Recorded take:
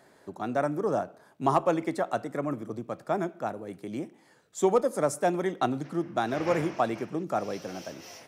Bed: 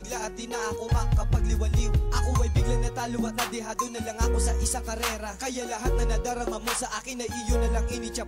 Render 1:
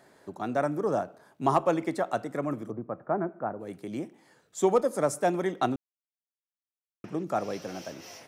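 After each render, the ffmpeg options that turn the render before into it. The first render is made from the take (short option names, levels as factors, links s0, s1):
-filter_complex "[0:a]asplit=3[s0][s1][s2];[s0]afade=t=out:st=2.7:d=0.02[s3];[s1]lowpass=f=1600:w=0.5412,lowpass=f=1600:w=1.3066,afade=t=in:st=2.7:d=0.02,afade=t=out:st=3.59:d=0.02[s4];[s2]afade=t=in:st=3.59:d=0.02[s5];[s3][s4][s5]amix=inputs=3:normalize=0,asplit=3[s6][s7][s8];[s6]atrim=end=5.76,asetpts=PTS-STARTPTS,afade=t=out:st=5.756:d=0.004:c=hsin[s9];[s7]atrim=start=5.76:end=7.04,asetpts=PTS-STARTPTS,volume=0[s10];[s8]atrim=start=7.04,asetpts=PTS-STARTPTS,afade=t=in:d=0.004:c=hsin[s11];[s9][s10][s11]concat=n=3:v=0:a=1"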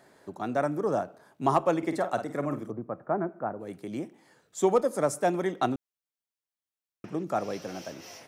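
-filter_complex "[0:a]asettb=1/sr,asplit=3[s0][s1][s2];[s0]atrim=end=1.784[s3];[s1]atrim=start=1.78:end=2.66,asetpts=PTS-STARTPTS,afade=t=in:d=0.004:c=qsin,afade=t=out:st=0.876:d=0.004:c=qsin,asplit=2[s4][s5];[s5]adelay=49,volume=0.335[s6];[s4][s6]amix=inputs=2:normalize=0,atrim=end_sample=38808[s7];[s2]atrim=start=2.656[s8];[s3][s7]acrossfade=d=0.004:c1=hsin:c2=qsin[s9];[s9][s8]acrossfade=d=0.004:c1=qsin:c2=hsin"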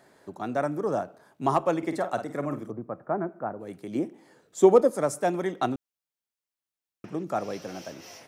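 -filter_complex "[0:a]asettb=1/sr,asplit=3[s0][s1][s2];[s0]atrim=end=3.954[s3];[s1]atrim=start=3.95:end=4.9,asetpts=PTS-STARTPTS,afade=t=in:d=0.004:c=qsin,afade=t=out:st=0.946:d=0.004:c=qsin,equalizer=f=350:w=0.71:g=7.5[s4];[s2]atrim=start=4.896[s5];[s3][s4]acrossfade=d=0.004:c1=hsin:c2=qsin[s6];[s6][s5]acrossfade=d=0.004:c1=qsin:c2=hsin"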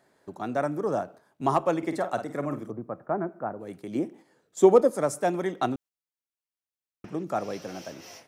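-af "agate=range=0.447:threshold=0.00447:ratio=16:detection=peak"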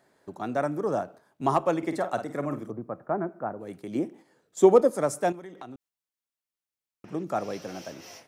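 -filter_complex "[0:a]asettb=1/sr,asplit=3[s0][s1][s2];[s0]atrim=end=5.324[s3];[s1]atrim=start=5.32:end=7.11,asetpts=PTS-STARTPTS,afade=t=in:d=0.004:c=qsin,afade=t=out:st=1.786:d=0.004:c=qsin,acompressor=threshold=0.01:ratio=5:attack=3.2:release=140:knee=1:detection=peak[s4];[s2]atrim=start=7.106[s5];[s3][s4]acrossfade=d=0.004:c1=hsin:c2=qsin[s6];[s6][s5]acrossfade=d=0.004:c1=qsin:c2=hsin"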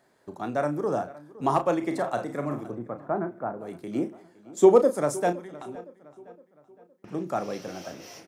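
-filter_complex "[0:a]asplit=2[s0][s1];[s1]adelay=34,volume=0.355[s2];[s0][s2]amix=inputs=2:normalize=0,asplit=2[s3][s4];[s4]adelay=514,lowpass=f=3700:p=1,volume=0.112,asplit=2[s5][s6];[s6]adelay=514,lowpass=f=3700:p=1,volume=0.46,asplit=2[s7][s8];[s8]adelay=514,lowpass=f=3700:p=1,volume=0.46,asplit=2[s9][s10];[s10]adelay=514,lowpass=f=3700:p=1,volume=0.46[s11];[s3][s5][s7][s9][s11]amix=inputs=5:normalize=0"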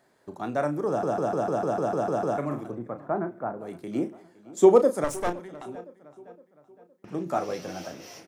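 -filter_complex "[0:a]asettb=1/sr,asplit=3[s0][s1][s2];[s0]atrim=end=5.044[s3];[s1]atrim=start=5.04:end=5.65,asetpts=PTS-STARTPTS,afade=t=in:d=0.004:c=qsin,afade=t=out:st=0.606:d=0.004:c=qsin,aeval=exprs='clip(val(0),-1,0.015)':c=same[s4];[s2]atrim=start=5.646[s5];[s3][s4]acrossfade=d=0.004:c1=hsin:c2=qsin[s6];[s6][s5]acrossfade=d=0.004:c1=qsin:c2=hsin,asettb=1/sr,asplit=3[s7][s8][s9];[s7]atrim=end=7.254[s10];[s8]atrim=start=7.25:end=7.87,asetpts=PTS-STARTPTS,afade=t=in:d=0.004:c=qsin,afade=t=out:st=0.616:d=0.004:c=qsin,asplit=2[s11][s12];[s12]adelay=12,volume=0.631[s13];[s11][s13]amix=inputs=2:normalize=0,atrim=end_sample=27342[s14];[s9]atrim=start=7.866[s15];[s10][s14]acrossfade=d=0.004:c1=hsin:c2=qsin[s16];[s16][s15]acrossfade=d=0.004:c1=qsin:c2=hsin,asplit=11[s17][s18][s19][s20][s21][s22][s23][s24][s25][s26][s27];[s17]atrim=end=1.032[s28];[s18]atrim=start=0.878:end=1.032[s29];[s19]atrim=start=0.878:end=1.032[s30];[s20]atrim=start=0.878:end=1.032[s31];[s21]atrim=start=0.878:end=1.032[s32];[s22]atrim=start=0.878:end=1.032[s33];[s23]atrim=start=0.878:end=1.032[s34];[s24]atrim=start=0.878:end=1.032[s35];[s25]atrim=start=0.878:end=1.032[s36];[s26]atrim=start=0.878:end=1.032[s37];[s27]atrim=start=2.378[s38];[s28][s29]acrossfade=d=0.004:c1=hsin:c2=hsin[s39];[s39][s30]acrossfade=d=0.004:c1=hsin:c2=hsin[s40];[s40][s31]acrossfade=d=0.004:c1=hsin:c2=hsin[s41];[s41][s32]acrossfade=d=0.004:c1=hsin:c2=hsin[s42];[s42][s33]acrossfade=d=0.004:c1=hsin:c2=hsin[s43];[s43][s34]acrossfade=d=0.004:c1=hsin:c2=hsin[s44];[s44][s35]acrossfade=d=0.004:c1=hsin:c2=hsin[s45];[s45][s36]acrossfade=d=0.004:c1=hsin:c2=hsin[s46];[s46][s37]acrossfade=d=0.004:c1=hsin:c2=hsin[s47];[s47][s38]acrossfade=d=0.004:c1=hsin:c2=hsin"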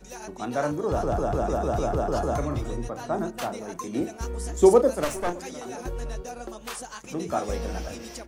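-filter_complex "[1:a]volume=0.398[s0];[0:a][s0]amix=inputs=2:normalize=0"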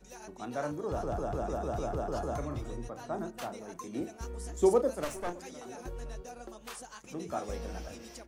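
-af "volume=0.376"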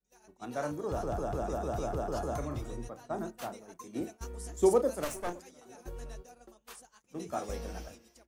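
-af "agate=range=0.0224:threshold=0.0141:ratio=3:detection=peak,highshelf=f=9800:g=8.5"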